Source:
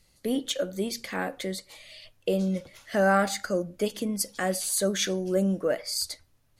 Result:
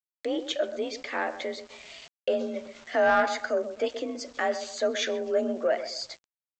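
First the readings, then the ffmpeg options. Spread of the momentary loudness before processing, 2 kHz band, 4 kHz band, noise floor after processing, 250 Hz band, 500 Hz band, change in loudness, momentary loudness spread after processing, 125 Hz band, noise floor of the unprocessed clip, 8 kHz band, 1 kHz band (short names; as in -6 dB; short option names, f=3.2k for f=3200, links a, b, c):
10 LU, +1.5 dB, -2.5 dB, under -85 dBFS, -6.5 dB, +1.5 dB, -1.0 dB, 14 LU, under -20 dB, -65 dBFS, -10.5 dB, +2.0 dB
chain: -filter_complex "[0:a]bass=f=250:g=-15,treble=f=4k:g=-11,acontrast=40,asplit=2[a][b];[b]adelay=128,lowpass=f=1.1k:p=1,volume=-11dB,asplit=2[c][d];[d]adelay=128,lowpass=f=1.1k:p=1,volume=0.35,asplit=2[e][f];[f]adelay=128,lowpass=f=1.1k:p=1,volume=0.35,asplit=2[g][h];[h]adelay=128,lowpass=f=1.1k:p=1,volume=0.35[i];[a][c][e][g][i]amix=inputs=5:normalize=0,afreqshift=40,aeval=exprs='0.501*(cos(1*acos(clip(val(0)/0.501,-1,1)))-cos(1*PI/2))+0.0316*(cos(5*acos(clip(val(0)/0.501,-1,1)))-cos(5*PI/2))':c=same,aresample=16000,aeval=exprs='val(0)*gte(abs(val(0)),0.00668)':c=same,aresample=44100,acompressor=mode=upward:threshold=-34dB:ratio=2.5,volume=-5dB"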